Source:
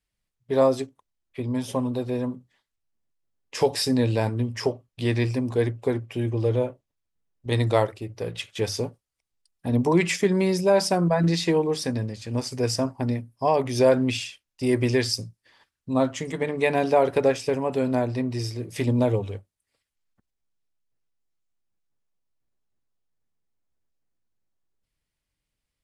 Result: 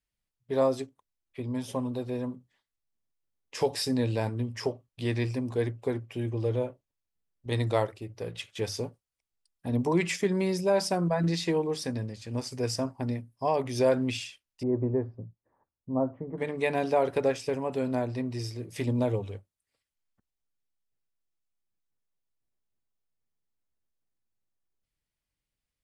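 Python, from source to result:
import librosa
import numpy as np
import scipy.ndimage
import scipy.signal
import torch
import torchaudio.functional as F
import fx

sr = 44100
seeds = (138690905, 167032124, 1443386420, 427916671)

y = fx.lowpass(x, sr, hz=1000.0, slope=24, at=(14.63, 16.38))
y = y * 10.0 ** (-5.5 / 20.0)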